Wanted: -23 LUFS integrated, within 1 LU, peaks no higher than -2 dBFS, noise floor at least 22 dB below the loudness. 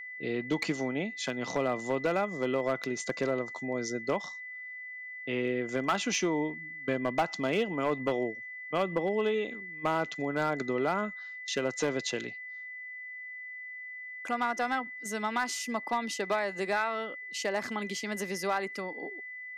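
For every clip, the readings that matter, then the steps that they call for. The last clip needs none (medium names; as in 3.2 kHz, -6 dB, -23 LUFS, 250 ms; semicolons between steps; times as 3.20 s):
clipped samples 0.5%; clipping level -21.0 dBFS; steady tone 2 kHz; tone level -40 dBFS; loudness -32.5 LUFS; peak level -21.0 dBFS; loudness target -23.0 LUFS
-> clip repair -21 dBFS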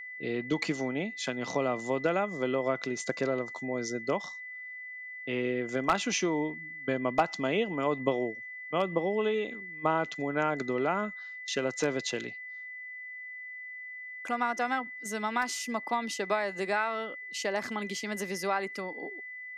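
clipped samples 0.0%; steady tone 2 kHz; tone level -40 dBFS
-> band-stop 2 kHz, Q 30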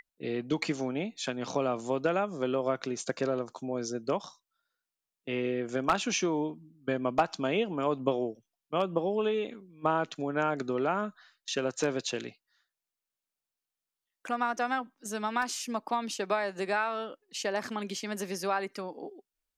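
steady tone not found; loudness -32.0 LUFS; peak level -12.0 dBFS; loudness target -23.0 LUFS
-> trim +9 dB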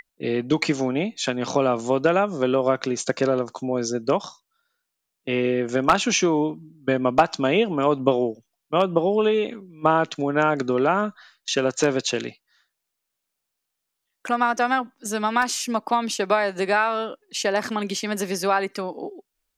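loudness -23.0 LUFS; peak level -3.0 dBFS; noise floor -81 dBFS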